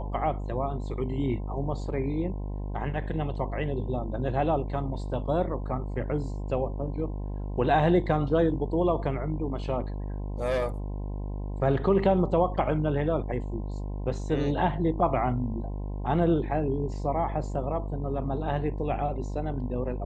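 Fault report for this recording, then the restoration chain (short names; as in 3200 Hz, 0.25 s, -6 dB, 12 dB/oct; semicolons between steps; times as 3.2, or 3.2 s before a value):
buzz 50 Hz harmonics 21 -33 dBFS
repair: de-hum 50 Hz, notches 21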